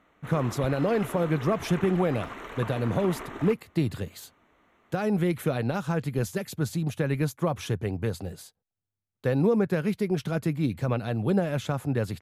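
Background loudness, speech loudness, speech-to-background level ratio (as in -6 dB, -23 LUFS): -39.5 LUFS, -28.0 LUFS, 11.5 dB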